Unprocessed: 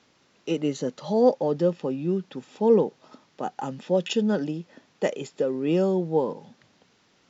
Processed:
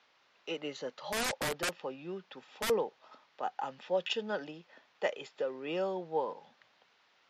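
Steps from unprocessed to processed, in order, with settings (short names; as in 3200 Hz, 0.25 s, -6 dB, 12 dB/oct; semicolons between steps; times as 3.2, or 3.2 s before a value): three-band isolator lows -19 dB, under 570 Hz, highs -22 dB, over 4800 Hz; 1.09–2.7 wrapped overs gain 26 dB; gain -1.5 dB; MP3 56 kbps 48000 Hz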